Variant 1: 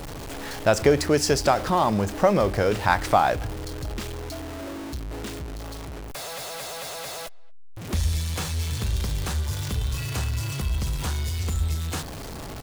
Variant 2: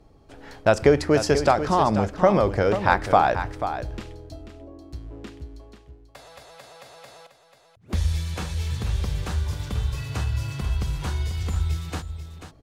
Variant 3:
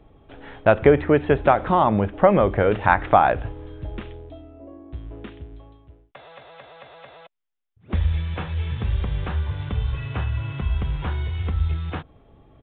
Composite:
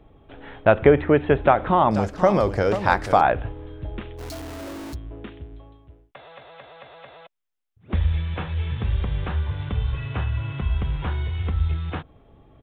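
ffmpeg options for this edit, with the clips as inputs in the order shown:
ffmpeg -i take0.wav -i take1.wav -i take2.wav -filter_complex "[2:a]asplit=3[link_01][link_02][link_03];[link_01]atrim=end=1.912[link_04];[1:a]atrim=start=1.908:end=3.212[link_05];[link_02]atrim=start=3.208:end=4.21[link_06];[0:a]atrim=start=4.17:end=4.96[link_07];[link_03]atrim=start=4.92[link_08];[link_04][link_05]acrossfade=duration=0.004:curve1=hsin:curve2=hsin[link_09];[link_09][link_06]acrossfade=duration=0.004:curve1=hsin:curve2=hsin[link_10];[link_10][link_07]acrossfade=duration=0.04:curve1=tri:curve2=tri[link_11];[link_11][link_08]acrossfade=duration=0.04:curve1=tri:curve2=tri" out.wav

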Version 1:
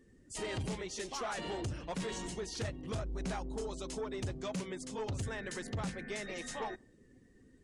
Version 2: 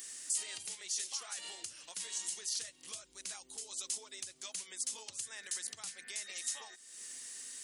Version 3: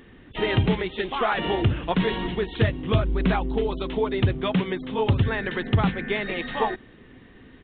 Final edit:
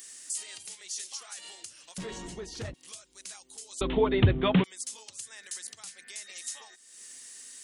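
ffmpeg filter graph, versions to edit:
ffmpeg -i take0.wav -i take1.wav -i take2.wav -filter_complex "[1:a]asplit=3[link_01][link_02][link_03];[link_01]atrim=end=1.982[link_04];[0:a]atrim=start=1.978:end=2.742[link_05];[link_02]atrim=start=2.738:end=3.812[link_06];[2:a]atrim=start=3.808:end=4.642[link_07];[link_03]atrim=start=4.638[link_08];[link_04][link_05]acrossfade=duration=0.004:curve1=hsin:curve2=hsin[link_09];[link_09][link_06]acrossfade=duration=0.004:curve1=hsin:curve2=hsin[link_10];[link_10][link_07]acrossfade=duration=0.004:curve1=hsin:curve2=hsin[link_11];[link_11][link_08]acrossfade=duration=0.004:curve1=hsin:curve2=hsin" out.wav

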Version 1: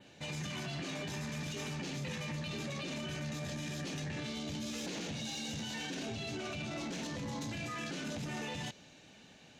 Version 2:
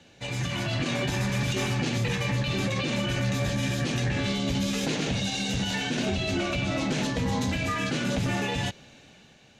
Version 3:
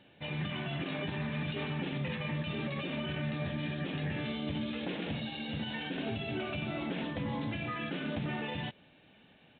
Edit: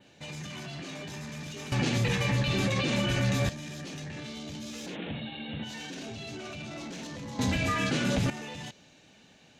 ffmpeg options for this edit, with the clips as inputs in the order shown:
ffmpeg -i take0.wav -i take1.wav -i take2.wav -filter_complex "[1:a]asplit=2[link_01][link_02];[0:a]asplit=4[link_03][link_04][link_05][link_06];[link_03]atrim=end=1.722[link_07];[link_01]atrim=start=1.718:end=3.492[link_08];[link_04]atrim=start=3.488:end=4.97[link_09];[2:a]atrim=start=4.87:end=5.72[link_10];[link_05]atrim=start=5.62:end=7.392[link_11];[link_02]atrim=start=7.388:end=8.302[link_12];[link_06]atrim=start=8.298[link_13];[link_07][link_08]acrossfade=duration=0.004:curve1=hsin:curve2=hsin[link_14];[link_14][link_09]acrossfade=duration=0.004:curve1=hsin:curve2=hsin[link_15];[link_15][link_10]acrossfade=duration=0.1:curve1=tri:curve2=tri[link_16];[link_16][link_11]acrossfade=duration=0.1:curve1=tri:curve2=tri[link_17];[link_17][link_12]acrossfade=duration=0.004:curve1=hsin:curve2=hsin[link_18];[link_18][link_13]acrossfade=duration=0.004:curve1=hsin:curve2=hsin" out.wav

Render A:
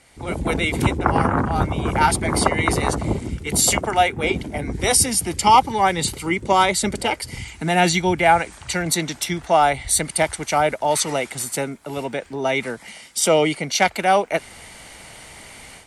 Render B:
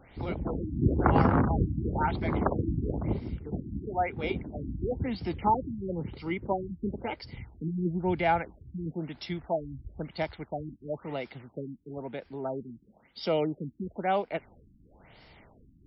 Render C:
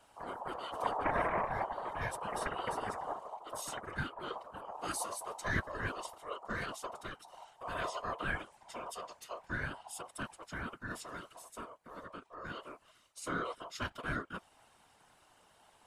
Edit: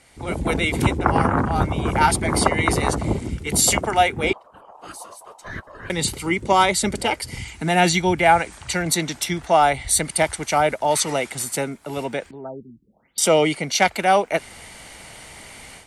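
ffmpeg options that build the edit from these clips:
ffmpeg -i take0.wav -i take1.wav -i take2.wav -filter_complex "[0:a]asplit=3[link_01][link_02][link_03];[link_01]atrim=end=4.332[link_04];[2:a]atrim=start=4.328:end=5.902[link_05];[link_02]atrim=start=5.898:end=12.312[link_06];[1:a]atrim=start=12.308:end=13.182[link_07];[link_03]atrim=start=13.178[link_08];[link_04][link_05]acrossfade=duration=0.004:curve1=hsin:curve2=hsin[link_09];[link_09][link_06]acrossfade=duration=0.004:curve1=hsin:curve2=hsin[link_10];[link_10][link_07]acrossfade=duration=0.004:curve1=hsin:curve2=hsin[link_11];[link_11][link_08]acrossfade=duration=0.004:curve1=hsin:curve2=hsin" out.wav

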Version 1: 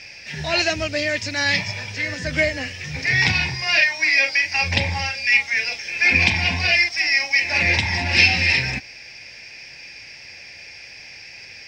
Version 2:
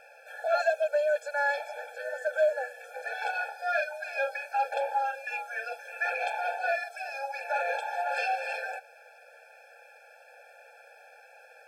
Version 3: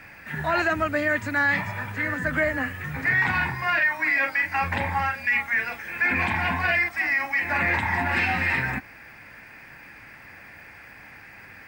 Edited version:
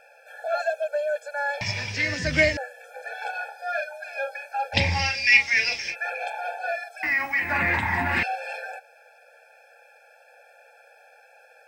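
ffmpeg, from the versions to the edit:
ffmpeg -i take0.wav -i take1.wav -i take2.wav -filter_complex "[0:a]asplit=2[link_01][link_02];[1:a]asplit=4[link_03][link_04][link_05][link_06];[link_03]atrim=end=1.612[link_07];[link_01]atrim=start=1.608:end=2.572[link_08];[link_04]atrim=start=2.568:end=4.79[link_09];[link_02]atrim=start=4.73:end=5.96[link_10];[link_05]atrim=start=5.9:end=7.032[link_11];[2:a]atrim=start=7.028:end=8.232[link_12];[link_06]atrim=start=8.228[link_13];[link_07][link_08]acrossfade=duration=0.004:curve1=hsin:curve2=hsin[link_14];[link_14][link_09]acrossfade=duration=0.004:curve1=hsin:curve2=hsin[link_15];[link_15][link_10]acrossfade=duration=0.06:curve1=tri:curve2=tri[link_16];[link_16][link_11]acrossfade=duration=0.06:curve1=tri:curve2=tri[link_17];[link_17][link_12]acrossfade=duration=0.004:curve1=hsin:curve2=hsin[link_18];[link_18][link_13]acrossfade=duration=0.004:curve1=hsin:curve2=hsin" out.wav

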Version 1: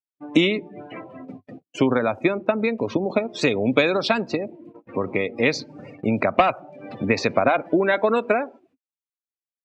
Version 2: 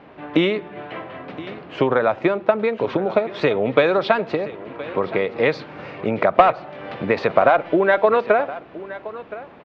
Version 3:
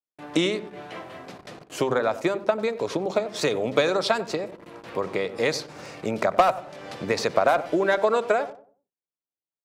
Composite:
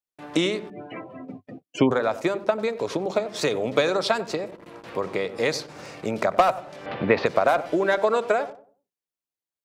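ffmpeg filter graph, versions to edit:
ffmpeg -i take0.wav -i take1.wav -i take2.wav -filter_complex "[2:a]asplit=3[link_01][link_02][link_03];[link_01]atrim=end=0.702[link_04];[0:a]atrim=start=0.698:end=1.912[link_05];[link_02]atrim=start=1.908:end=6.862[link_06];[1:a]atrim=start=6.858:end=7.262[link_07];[link_03]atrim=start=7.258[link_08];[link_04][link_05]acrossfade=duration=0.004:curve1=hsin:curve2=hsin[link_09];[link_09][link_06]acrossfade=duration=0.004:curve1=hsin:curve2=hsin[link_10];[link_10][link_07]acrossfade=duration=0.004:curve1=hsin:curve2=hsin[link_11];[link_11][link_08]acrossfade=duration=0.004:curve1=hsin:curve2=hsin" out.wav

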